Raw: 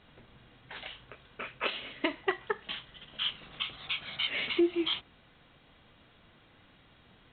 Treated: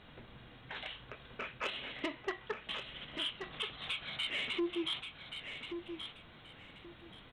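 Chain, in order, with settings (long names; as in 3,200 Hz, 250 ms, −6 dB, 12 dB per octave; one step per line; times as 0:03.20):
downward compressor 1.5 to 1, threshold −48 dBFS, peak gain reduction 9.5 dB
soft clipping −31 dBFS, distortion −15 dB
on a send: repeating echo 1,129 ms, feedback 23%, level −8 dB
on the sum: level +3 dB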